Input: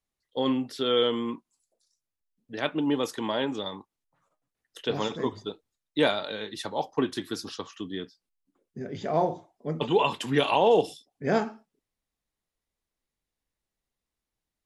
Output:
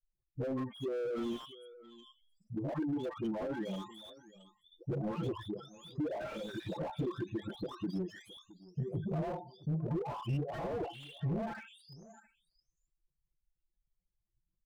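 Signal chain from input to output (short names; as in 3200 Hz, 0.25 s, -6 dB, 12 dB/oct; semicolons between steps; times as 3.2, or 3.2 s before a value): spectral delay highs late, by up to 0.887 s; notches 50/100/150/200 Hz; spectral gate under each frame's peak -10 dB strong; tone controls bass +10 dB, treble -9 dB; transient shaper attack +5 dB, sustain -3 dB; compressor 5:1, threshold -28 dBFS, peak gain reduction 10 dB; soft clip -28 dBFS, distortion -15 dB; echo 0.667 s -20.5 dB; slew limiter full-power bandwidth 9.3 Hz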